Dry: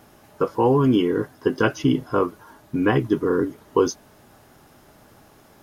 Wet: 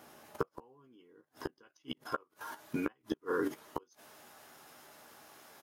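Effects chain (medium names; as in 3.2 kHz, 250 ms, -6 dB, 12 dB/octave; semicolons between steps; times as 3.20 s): high-pass 360 Hz 6 dB/octave, from 1.63 s 960 Hz; level held to a coarse grid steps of 13 dB; inverted gate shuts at -27 dBFS, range -42 dB; doubling 13 ms -9 dB; trim +7.5 dB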